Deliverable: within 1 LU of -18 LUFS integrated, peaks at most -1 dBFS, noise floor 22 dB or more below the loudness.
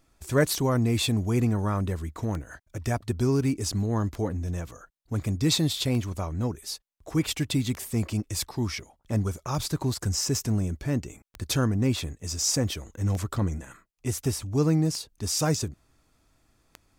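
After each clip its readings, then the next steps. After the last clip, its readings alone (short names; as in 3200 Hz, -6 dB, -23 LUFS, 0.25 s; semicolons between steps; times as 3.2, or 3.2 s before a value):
clicks 10; loudness -27.5 LUFS; peak -11.5 dBFS; loudness target -18.0 LUFS
-> de-click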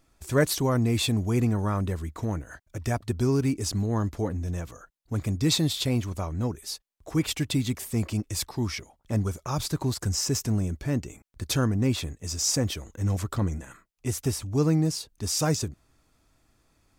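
clicks 0; loudness -27.5 LUFS; peak -11.5 dBFS; loudness target -18.0 LUFS
-> gain +9.5 dB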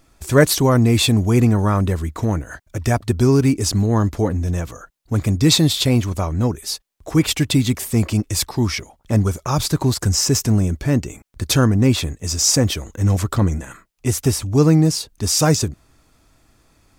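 loudness -18.0 LUFS; peak -2.0 dBFS; noise floor -59 dBFS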